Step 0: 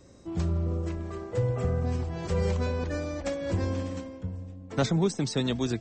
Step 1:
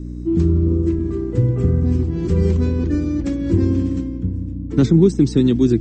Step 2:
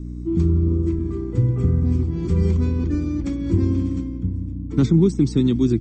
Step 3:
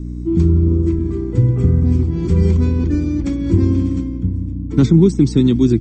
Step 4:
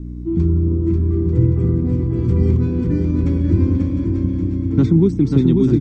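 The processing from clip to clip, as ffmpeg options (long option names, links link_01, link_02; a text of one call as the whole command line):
ffmpeg -i in.wav -af "aeval=exprs='val(0)+0.0112*(sin(2*PI*60*n/s)+sin(2*PI*2*60*n/s)/2+sin(2*PI*3*60*n/s)/3+sin(2*PI*4*60*n/s)/4+sin(2*PI*5*60*n/s)/5)':channel_layout=same,lowshelf=frequency=460:width_type=q:width=3:gain=10.5" out.wav
ffmpeg -i in.wav -af "aecho=1:1:0.9:0.36,volume=-4dB" out.wav
ffmpeg -i in.wav -af "bandreject=frequency=1200:width=19,volume=5dB" out.wav
ffmpeg -i in.wav -filter_complex "[0:a]aemphasis=mode=reproduction:type=75fm,asplit=2[link_01][link_02];[link_02]aecho=0:1:540|891|1119|1267|1364:0.631|0.398|0.251|0.158|0.1[link_03];[link_01][link_03]amix=inputs=2:normalize=0,volume=-4dB" out.wav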